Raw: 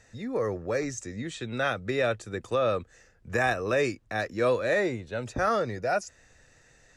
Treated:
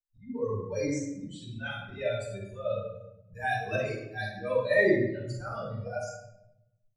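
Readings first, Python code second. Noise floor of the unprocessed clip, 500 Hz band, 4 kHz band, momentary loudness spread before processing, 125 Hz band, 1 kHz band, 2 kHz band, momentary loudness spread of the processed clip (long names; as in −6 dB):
−61 dBFS, −2.5 dB, −5.0 dB, 9 LU, −0.5 dB, −6.5 dB, −2.0 dB, 16 LU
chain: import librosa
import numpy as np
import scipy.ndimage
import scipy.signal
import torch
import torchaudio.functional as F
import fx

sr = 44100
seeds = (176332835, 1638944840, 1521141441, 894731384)

y = fx.bin_expand(x, sr, power=3.0)
y = fx.auto_swell(y, sr, attack_ms=336.0)
y = fx.room_shoebox(y, sr, seeds[0], volume_m3=250.0, walls='mixed', distance_m=6.4)
y = F.gain(torch.from_numpy(y), -6.5).numpy()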